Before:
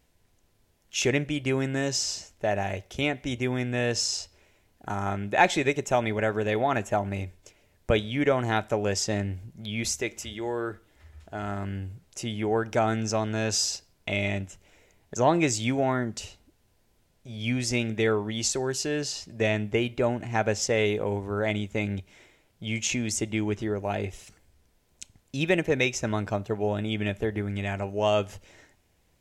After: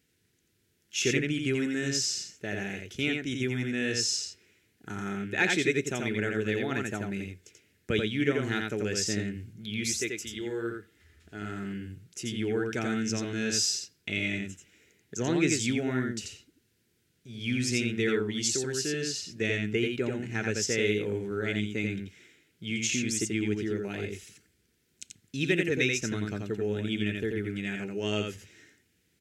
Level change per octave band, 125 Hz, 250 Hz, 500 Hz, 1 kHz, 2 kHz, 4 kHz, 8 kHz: -4.0, -0.5, -4.5, -13.0, -0.5, -0.5, -0.5 dB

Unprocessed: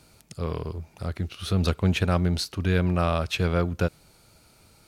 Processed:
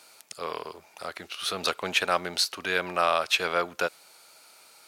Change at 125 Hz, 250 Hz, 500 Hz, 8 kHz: -23.5, -14.0, -1.0, +5.5 dB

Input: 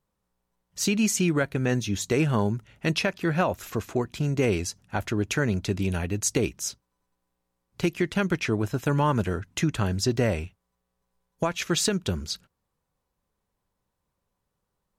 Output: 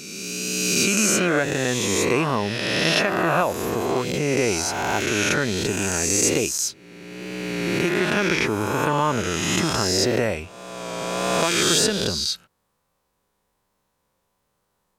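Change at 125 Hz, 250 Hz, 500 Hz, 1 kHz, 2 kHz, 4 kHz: -1.5, +2.5, +5.5, +7.5, +8.5, +10.0 dB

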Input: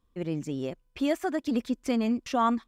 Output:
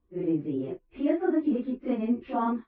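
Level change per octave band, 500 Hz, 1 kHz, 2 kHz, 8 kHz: +1.0 dB, -3.5 dB, -5.5 dB, under -35 dB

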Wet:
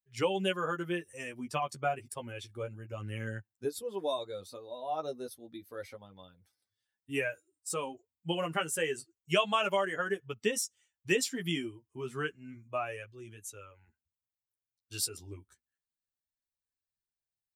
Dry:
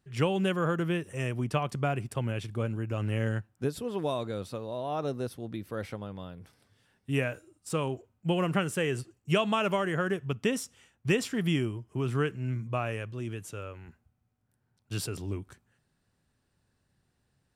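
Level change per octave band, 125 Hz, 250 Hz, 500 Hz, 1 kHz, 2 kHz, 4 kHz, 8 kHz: -12.5, -8.0, -3.0, -1.0, -1.0, +1.0, +4.5 dB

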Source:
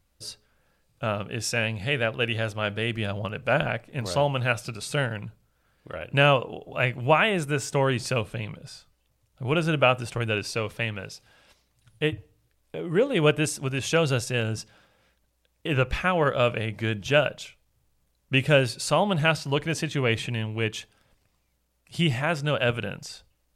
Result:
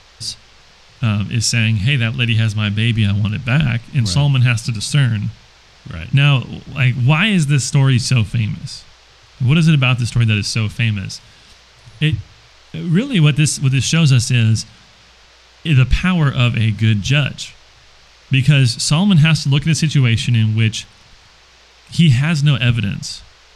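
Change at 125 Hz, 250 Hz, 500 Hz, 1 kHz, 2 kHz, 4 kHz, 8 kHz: +16.0, +13.0, -5.5, -1.0, +6.0, +10.5, +12.5 dB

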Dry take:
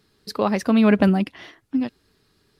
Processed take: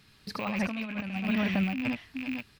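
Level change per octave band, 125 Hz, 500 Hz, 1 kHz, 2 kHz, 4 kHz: -8.5, -15.0, -10.0, -2.0, -4.0 dB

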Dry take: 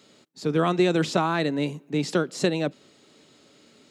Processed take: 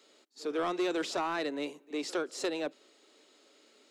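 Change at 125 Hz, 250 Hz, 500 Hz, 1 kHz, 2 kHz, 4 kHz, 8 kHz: -27.5, -11.0, -8.5, -8.0, -7.5, -7.0, -5.5 dB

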